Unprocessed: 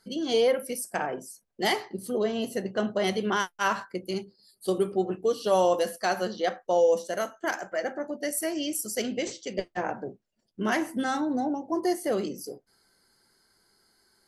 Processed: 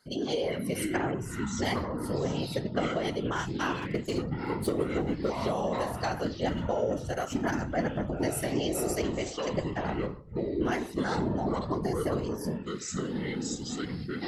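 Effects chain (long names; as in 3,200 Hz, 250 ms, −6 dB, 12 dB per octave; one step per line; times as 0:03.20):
high-shelf EQ 6,600 Hz −5.5 dB
0:03.82–0:05.30: leveller curve on the samples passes 2
downward compressor, threshold −28 dBFS, peak gain reduction 10.5 dB
random phases in short frames
delay with pitch and tempo change per echo 341 ms, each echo −7 semitones, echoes 3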